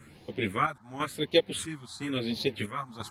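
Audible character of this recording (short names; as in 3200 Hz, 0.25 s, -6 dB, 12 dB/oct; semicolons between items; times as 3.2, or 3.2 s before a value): phasing stages 4, 0.94 Hz, lowest notch 430–1400 Hz; chopped level 1 Hz, depth 65%, duty 65%; a shimmering, thickened sound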